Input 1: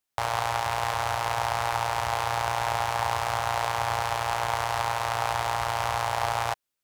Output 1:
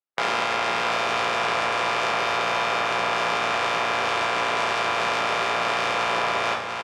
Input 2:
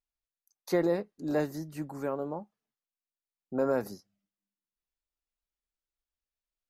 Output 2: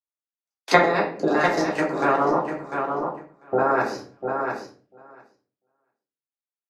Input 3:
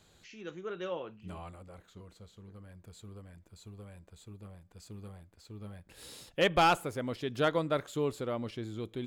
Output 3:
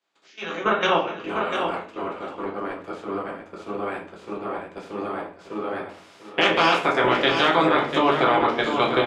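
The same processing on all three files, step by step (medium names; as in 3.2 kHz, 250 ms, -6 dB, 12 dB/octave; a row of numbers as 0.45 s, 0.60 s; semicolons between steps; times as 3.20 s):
spectral peaks clipped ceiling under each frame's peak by 22 dB; high-pass 300 Hz 12 dB/octave; tape spacing loss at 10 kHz 26 dB; band-stop 4.1 kHz, Q 28; level held to a coarse grid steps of 14 dB; feedback delay 696 ms, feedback 17%, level -8 dB; simulated room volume 51 m³, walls mixed, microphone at 0.75 m; compression 2.5:1, threshold -45 dBFS; three bands expanded up and down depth 70%; normalise loudness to -23 LUFS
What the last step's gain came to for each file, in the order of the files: +21.0 dB, +24.0 dB, +25.0 dB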